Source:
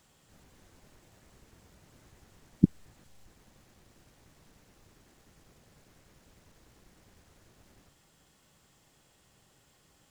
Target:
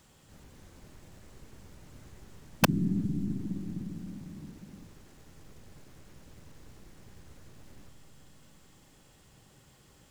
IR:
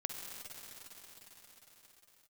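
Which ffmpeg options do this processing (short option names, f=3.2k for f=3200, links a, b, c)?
-filter_complex "[0:a]bandreject=f=690:w=20,asplit=2[a][b];[1:a]atrim=start_sample=2205,lowshelf=f=450:g=10[c];[b][c]afir=irnorm=-1:irlink=0,volume=-5dB[d];[a][d]amix=inputs=2:normalize=0,aeval=exprs='(mod(4.47*val(0)+1,2)-1)/4.47':c=same"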